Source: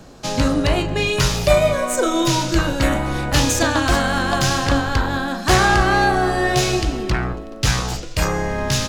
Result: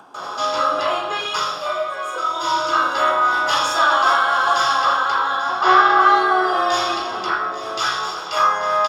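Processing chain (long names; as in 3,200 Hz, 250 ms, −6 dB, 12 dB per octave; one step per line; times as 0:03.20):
high-pass filter 1,200 Hz 12 dB per octave
high-shelf EQ 6,300 Hz −6.5 dB
upward compression, threshold −25 dBFS
0:01.10–0:02.51: duck −8.5 dB, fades 0.39 s
0:05.23–0:05.86: high-frequency loss of the air 150 metres
0:06.37–0:07.14: frequency shifter −22 Hz
single-tap delay 837 ms −15 dB
convolution reverb RT60 0.55 s, pre-delay 144 ms, DRR −17 dB
level −14.5 dB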